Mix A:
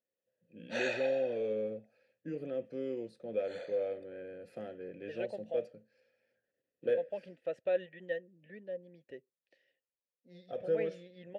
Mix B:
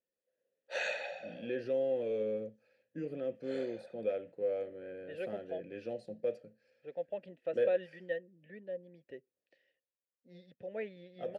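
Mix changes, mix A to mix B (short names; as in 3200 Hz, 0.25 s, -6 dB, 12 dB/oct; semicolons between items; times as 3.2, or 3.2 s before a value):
first voice: entry +0.70 s; second voice: add high shelf 5800 Hz -6.5 dB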